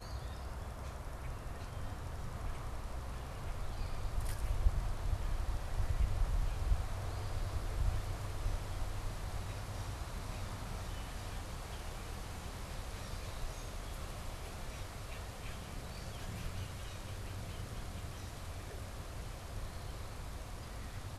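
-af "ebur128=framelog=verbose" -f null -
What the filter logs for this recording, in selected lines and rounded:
Integrated loudness:
  I:         -43.2 LUFS
  Threshold: -53.2 LUFS
Loudness range:
  LRA:         6.5 LU
  Threshold: -62.9 LUFS
  LRA low:   -45.8 LUFS
  LRA high:  -39.3 LUFS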